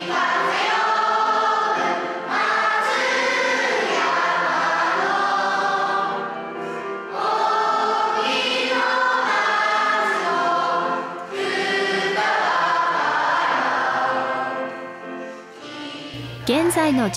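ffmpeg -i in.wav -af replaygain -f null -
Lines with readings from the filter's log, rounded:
track_gain = +3.5 dB
track_peak = 0.296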